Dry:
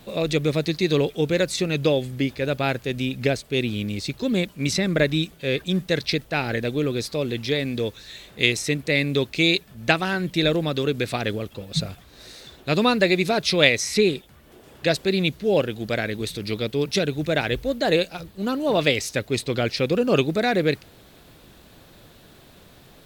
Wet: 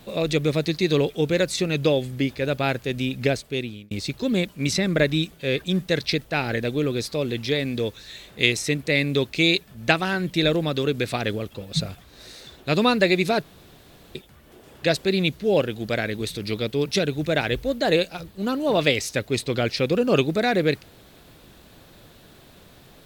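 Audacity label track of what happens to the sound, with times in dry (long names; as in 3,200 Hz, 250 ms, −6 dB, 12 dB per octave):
3.380000	3.910000	fade out
13.430000	14.150000	fill with room tone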